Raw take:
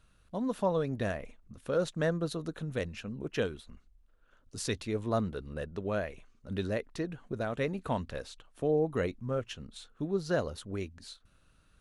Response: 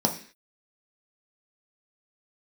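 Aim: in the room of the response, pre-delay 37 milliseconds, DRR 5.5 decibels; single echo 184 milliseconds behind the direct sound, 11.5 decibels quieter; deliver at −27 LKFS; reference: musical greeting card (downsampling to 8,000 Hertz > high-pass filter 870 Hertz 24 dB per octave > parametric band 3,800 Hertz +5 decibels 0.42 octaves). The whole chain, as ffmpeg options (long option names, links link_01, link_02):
-filter_complex "[0:a]aecho=1:1:184:0.266,asplit=2[link_01][link_02];[1:a]atrim=start_sample=2205,adelay=37[link_03];[link_02][link_03]afir=irnorm=-1:irlink=0,volume=-17dB[link_04];[link_01][link_04]amix=inputs=2:normalize=0,aresample=8000,aresample=44100,highpass=frequency=870:width=0.5412,highpass=frequency=870:width=1.3066,equalizer=frequency=3800:width_type=o:width=0.42:gain=5,volume=16dB"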